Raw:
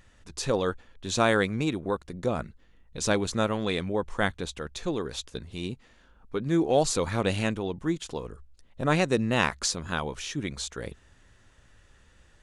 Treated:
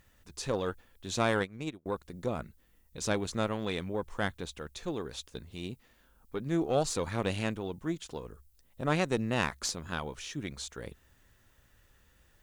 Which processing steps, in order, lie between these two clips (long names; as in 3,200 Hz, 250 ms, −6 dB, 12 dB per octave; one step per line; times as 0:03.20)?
background noise violet −67 dBFS
harmonic generator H 4 −20 dB, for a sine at −7 dBFS
0:01.39–0:01.86: expander for the loud parts 2.5 to 1, over −40 dBFS
level −6 dB